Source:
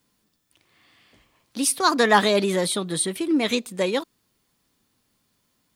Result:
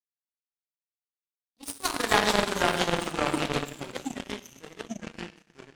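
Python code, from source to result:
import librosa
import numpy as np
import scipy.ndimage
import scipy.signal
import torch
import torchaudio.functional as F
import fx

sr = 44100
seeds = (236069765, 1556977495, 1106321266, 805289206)

y = fx.rev_gated(x, sr, seeds[0], gate_ms=470, shape='falling', drr_db=-3.0)
y = fx.power_curve(y, sr, exponent=3.0)
y = fx.echo_pitch(y, sr, ms=94, semitones=-3, count=2, db_per_echo=-3.0)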